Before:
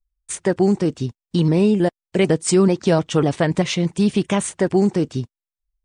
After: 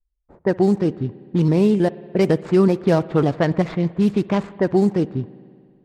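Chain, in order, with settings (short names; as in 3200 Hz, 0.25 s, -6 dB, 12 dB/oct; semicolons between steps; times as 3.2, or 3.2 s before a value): median filter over 15 samples; low-pass opened by the level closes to 540 Hz, open at -12 dBFS; spring tank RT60 2.1 s, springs 59 ms, chirp 40 ms, DRR 18 dB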